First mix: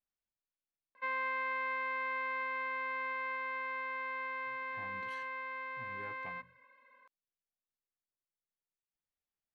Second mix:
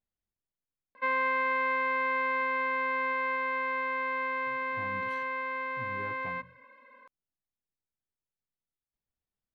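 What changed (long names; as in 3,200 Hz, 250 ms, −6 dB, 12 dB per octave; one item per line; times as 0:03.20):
background +6.0 dB
master: add low-shelf EQ 460 Hz +11 dB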